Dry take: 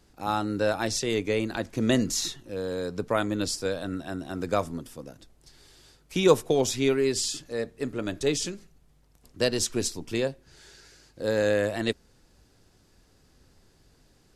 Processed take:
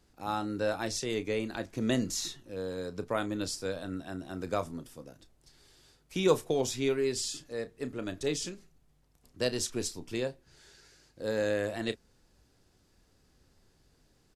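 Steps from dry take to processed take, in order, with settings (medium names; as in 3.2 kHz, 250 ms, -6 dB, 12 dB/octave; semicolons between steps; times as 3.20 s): doubling 32 ms -13 dB; trim -6 dB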